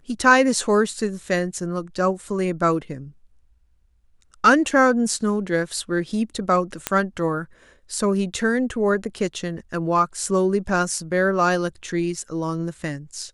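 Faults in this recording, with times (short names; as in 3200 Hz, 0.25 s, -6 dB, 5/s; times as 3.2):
6.87 pop -4 dBFS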